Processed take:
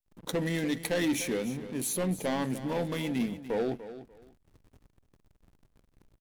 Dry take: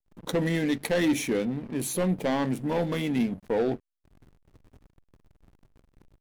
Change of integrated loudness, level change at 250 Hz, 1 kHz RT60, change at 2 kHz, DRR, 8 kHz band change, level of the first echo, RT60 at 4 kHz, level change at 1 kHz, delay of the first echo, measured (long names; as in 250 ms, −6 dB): −4.0 dB, −4.5 dB, no reverb audible, −3.0 dB, no reverb audible, +0.5 dB, −13.5 dB, no reverb audible, −4.0 dB, 294 ms